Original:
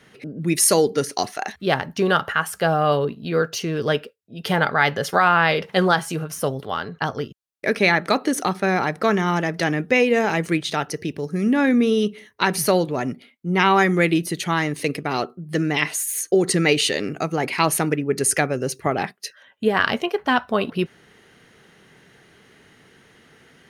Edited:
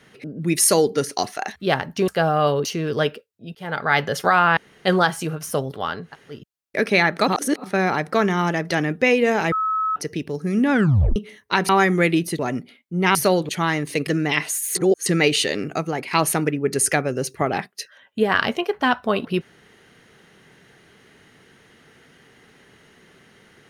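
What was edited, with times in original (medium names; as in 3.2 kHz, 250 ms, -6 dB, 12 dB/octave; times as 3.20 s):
2.08–2.53 s: delete
3.10–3.54 s: delete
4.44–4.84 s: fade in
5.46–5.74 s: room tone
6.97–7.24 s: room tone, crossfade 0.16 s
8.17–8.53 s: reverse
10.41–10.85 s: bleep 1.29 kHz -19 dBFS
11.61 s: tape stop 0.44 s
12.58–12.92 s: swap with 13.68–14.38 s
14.96–15.52 s: delete
16.20–16.51 s: reverse
17.25–17.56 s: fade out, to -8 dB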